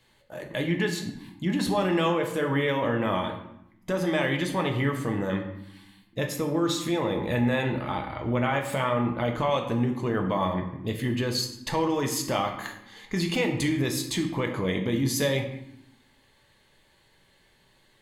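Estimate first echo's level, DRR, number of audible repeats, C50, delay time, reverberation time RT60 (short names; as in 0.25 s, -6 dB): none, 2.5 dB, none, 8.0 dB, none, 0.80 s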